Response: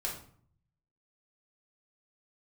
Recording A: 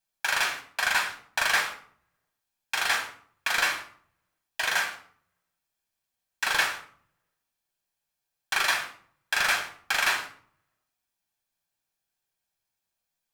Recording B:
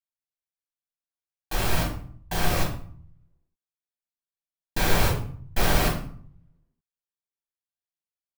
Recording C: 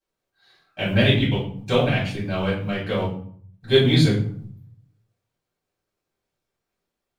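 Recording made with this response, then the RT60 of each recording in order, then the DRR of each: B; 0.55, 0.55, 0.55 s; 3.0, -3.5, -10.0 dB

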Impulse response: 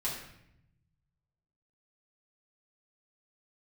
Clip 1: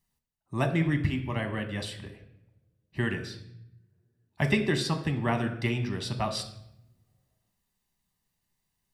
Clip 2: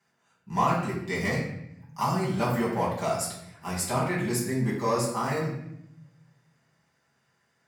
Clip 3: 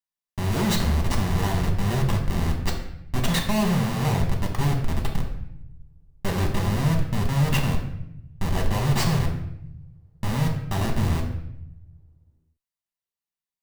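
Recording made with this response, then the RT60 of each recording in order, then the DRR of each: 2; 0.80, 0.75, 0.80 s; 6.0, -6.5, 0.0 dB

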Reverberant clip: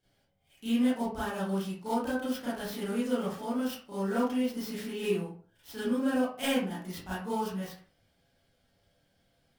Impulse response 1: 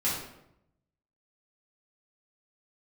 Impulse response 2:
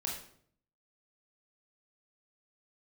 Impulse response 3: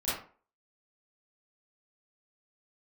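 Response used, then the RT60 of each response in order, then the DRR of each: 3; 0.80, 0.60, 0.40 s; -10.0, -2.0, -12.0 dB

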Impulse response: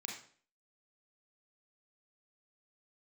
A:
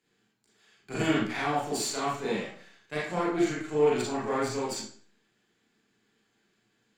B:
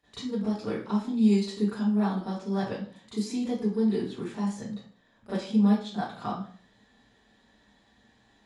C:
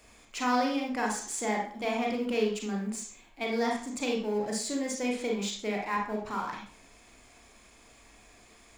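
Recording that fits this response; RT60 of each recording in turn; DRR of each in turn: C; 0.50, 0.50, 0.50 s; -6.5, -15.5, -0.5 dB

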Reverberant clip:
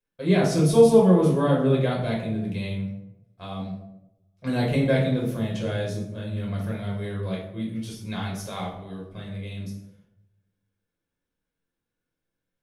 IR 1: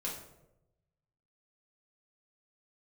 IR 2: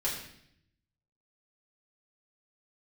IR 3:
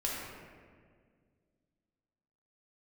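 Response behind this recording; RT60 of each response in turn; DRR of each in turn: 1; 0.90, 0.70, 1.9 s; -4.0, -7.0, -5.0 dB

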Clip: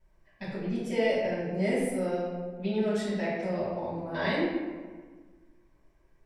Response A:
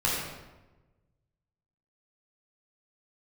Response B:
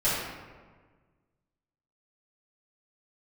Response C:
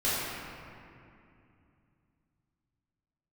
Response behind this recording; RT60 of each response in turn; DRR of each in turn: B; 1.1, 1.5, 2.6 s; -5.0, -12.5, -11.0 dB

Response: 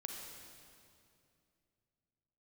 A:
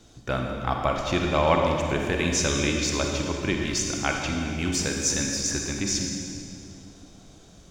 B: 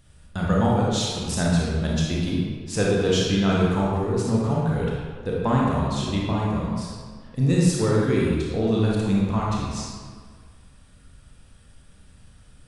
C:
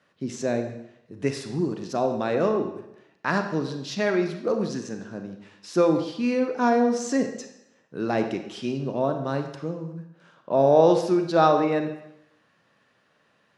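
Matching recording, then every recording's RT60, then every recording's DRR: A; 2.5, 1.8, 0.80 s; 1.0, -5.0, 6.0 dB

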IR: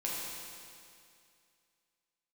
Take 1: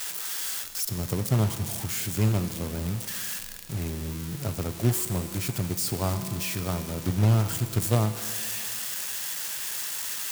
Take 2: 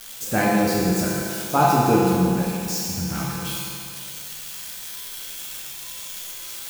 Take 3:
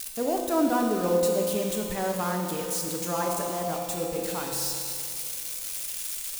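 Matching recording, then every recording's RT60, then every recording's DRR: 2; 2.4, 2.4, 2.4 s; 9.5, -5.5, 0.0 dB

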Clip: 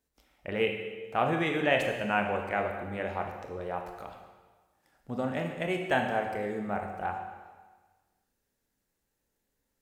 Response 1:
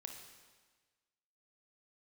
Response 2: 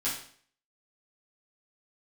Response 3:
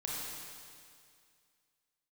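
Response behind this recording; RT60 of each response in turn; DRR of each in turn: 1; 1.4, 0.50, 2.2 s; 3.0, -9.5, -5.0 dB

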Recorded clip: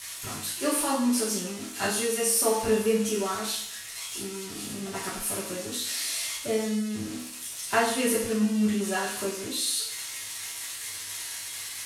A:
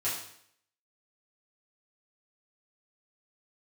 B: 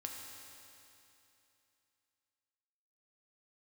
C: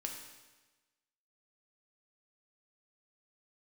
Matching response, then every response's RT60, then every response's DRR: A; 0.65, 2.9, 1.2 s; -10.0, 0.0, 1.5 dB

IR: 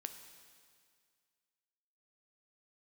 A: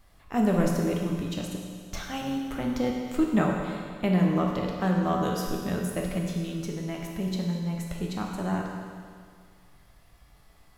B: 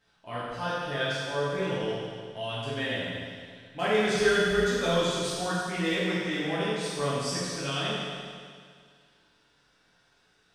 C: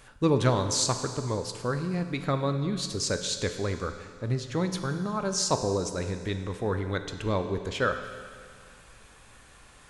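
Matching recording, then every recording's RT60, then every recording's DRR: C; 2.0, 2.0, 2.0 s; -1.0, -10.5, 7.0 dB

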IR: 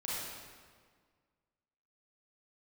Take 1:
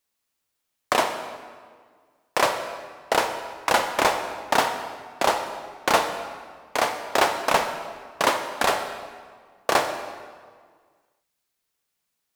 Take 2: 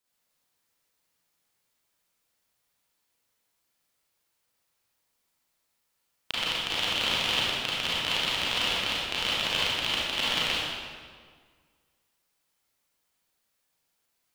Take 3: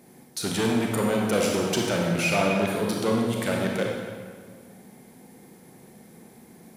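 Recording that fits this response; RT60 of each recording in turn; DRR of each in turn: 2; 1.7, 1.7, 1.7 s; 6.5, -8.0, -1.5 dB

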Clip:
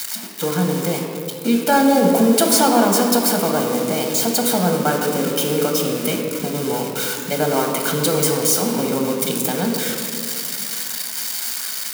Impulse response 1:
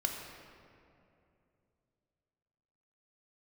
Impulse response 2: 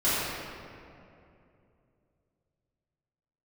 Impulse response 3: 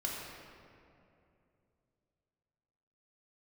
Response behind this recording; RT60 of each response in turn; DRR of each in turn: 1; 2.7, 2.7, 2.7 s; 1.5, -13.0, -3.5 dB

